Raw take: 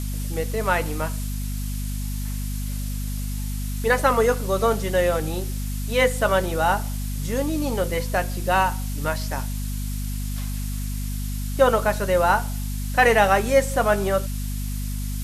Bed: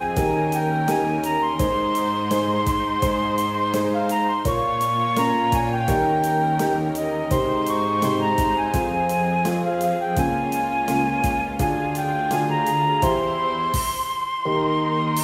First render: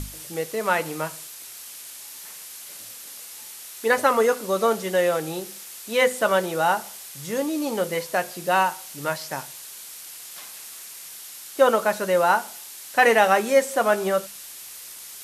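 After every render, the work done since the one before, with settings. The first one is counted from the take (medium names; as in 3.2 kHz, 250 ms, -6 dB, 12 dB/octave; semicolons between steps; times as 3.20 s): hum notches 50/100/150/200/250 Hz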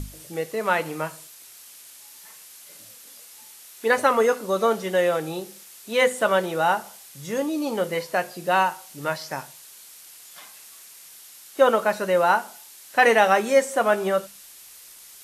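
noise print and reduce 6 dB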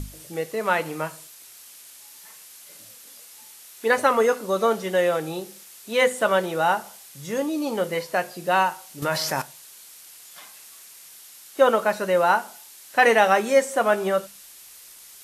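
9.02–9.42 s: level flattener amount 70%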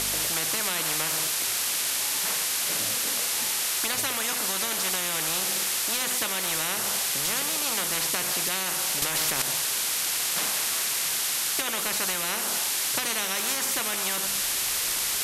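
compression 2:1, threshold -28 dBFS, peak gain reduction 9.5 dB; spectrum-flattening compressor 10:1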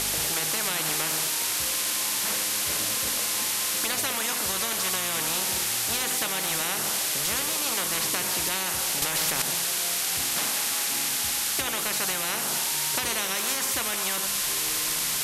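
add bed -22.5 dB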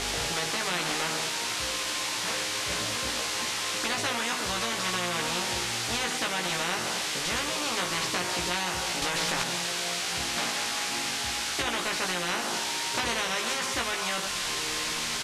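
distance through air 87 m; doubling 17 ms -2.5 dB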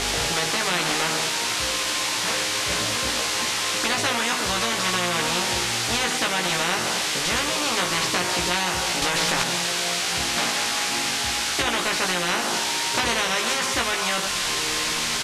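trim +6 dB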